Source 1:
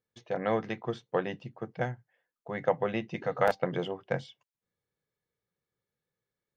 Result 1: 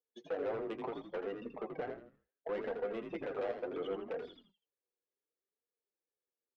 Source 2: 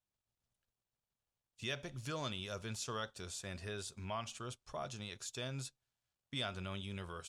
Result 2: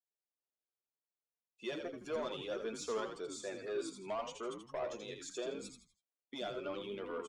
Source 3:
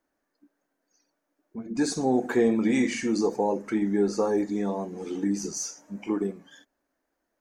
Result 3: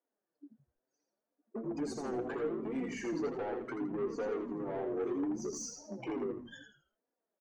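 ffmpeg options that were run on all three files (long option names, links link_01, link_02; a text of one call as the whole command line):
ffmpeg -i in.wav -filter_complex "[0:a]acompressor=threshold=-37dB:ratio=10,aeval=exprs='0.0188*(abs(mod(val(0)/0.0188+3,4)-2)-1)':channel_layout=same,afftdn=noise_reduction=18:noise_floor=-51,highpass=frequency=370:width=0.5412,highpass=frequency=370:width=1.3066,tiltshelf=frequency=800:gain=9,asoftclip=type=tanh:threshold=-40dB,asplit=5[link_01][link_02][link_03][link_04][link_05];[link_02]adelay=82,afreqshift=-74,volume=-6dB[link_06];[link_03]adelay=164,afreqshift=-148,volume=-15.6dB[link_07];[link_04]adelay=246,afreqshift=-222,volume=-25.3dB[link_08];[link_05]adelay=328,afreqshift=-296,volume=-34.9dB[link_09];[link_01][link_06][link_07][link_08][link_09]amix=inputs=5:normalize=0,flanger=delay=4.1:depth=4.3:regen=34:speed=0.7:shape=sinusoidal,volume=11dB" out.wav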